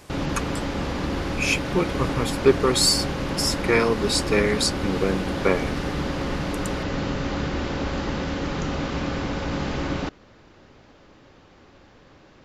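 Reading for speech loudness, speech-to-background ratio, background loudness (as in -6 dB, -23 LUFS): -23.5 LUFS, 4.0 dB, -27.5 LUFS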